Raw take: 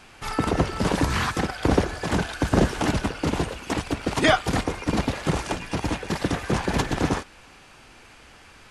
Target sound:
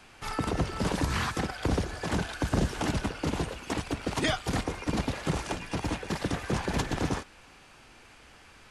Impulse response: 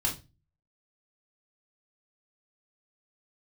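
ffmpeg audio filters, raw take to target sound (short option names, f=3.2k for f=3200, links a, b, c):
-filter_complex "[0:a]acrossover=split=190|3000[a][b][c];[b]acompressor=threshold=-23dB:ratio=6[d];[a][d][c]amix=inputs=3:normalize=0,volume=-4.5dB"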